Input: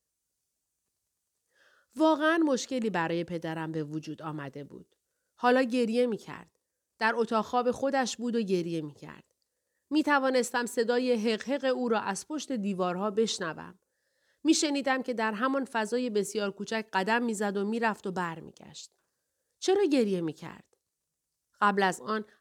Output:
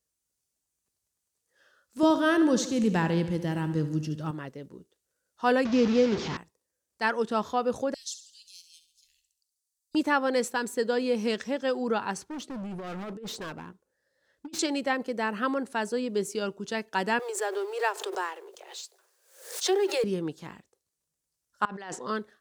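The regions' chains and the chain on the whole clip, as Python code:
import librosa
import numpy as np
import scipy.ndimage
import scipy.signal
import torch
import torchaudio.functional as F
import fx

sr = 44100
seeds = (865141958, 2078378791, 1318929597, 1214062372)

y = fx.chain(x, sr, fx.bass_treble(bass_db=12, treble_db=5),
    fx.echo_feedback(ms=72, feedback_pct=57, wet_db=-12.0), at=(2.03, 4.31))
y = fx.chain(y, sr, fx.delta_mod(bps=32000, step_db=-29.5),
    fx.highpass(hz=59.0, slope=12),
    fx.low_shelf(hz=470.0, db=7.0), at=(5.65, 6.37))
y = fx.chain(y, sr, fx.cheby2_bandstop(low_hz=120.0, high_hz=1300.0, order=4, stop_db=60),
    fx.echo_feedback(ms=69, feedback_pct=44, wet_db=-11.5), at=(7.94, 9.95))
y = fx.chain(y, sr, fx.high_shelf(hz=3300.0, db=-9.0),
    fx.over_compress(threshold_db=-31.0, ratio=-0.5),
    fx.clip_hard(threshold_db=-34.5), at=(12.17, 14.59))
y = fx.chain(y, sr, fx.law_mismatch(coded='mu'),
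    fx.steep_highpass(hz=360.0, slope=96),
    fx.pre_swell(db_per_s=96.0), at=(17.19, 20.04))
y = fx.chain(y, sr, fx.over_compress(threshold_db=-36.0, ratio=-1.0),
    fx.lowpass(hz=5400.0, slope=12),
    fx.low_shelf(hz=250.0, db=-10.0), at=(21.65, 22.08))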